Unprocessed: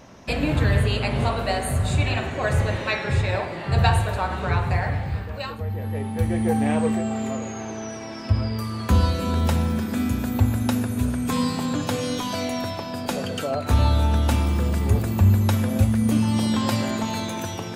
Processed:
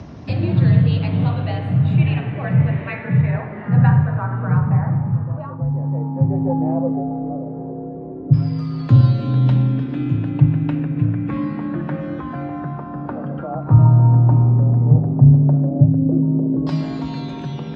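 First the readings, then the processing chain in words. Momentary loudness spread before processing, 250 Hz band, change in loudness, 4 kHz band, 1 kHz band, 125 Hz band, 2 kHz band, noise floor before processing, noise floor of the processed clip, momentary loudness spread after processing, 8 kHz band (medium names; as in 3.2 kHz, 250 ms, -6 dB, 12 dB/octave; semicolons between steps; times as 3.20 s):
9 LU, +4.5 dB, +5.5 dB, no reading, -2.0 dB, +8.0 dB, -5.0 dB, -33 dBFS, -31 dBFS, 14 LU, under -25 dB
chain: LFO low-pass saw down 0.12 Hz 430–5100 Hz; in parallel at -1 dB: upward compressor, threshold -20 dBFS; on the sum: RIAA curve playback; frequency shift +46 Hz; trim -12.5 dB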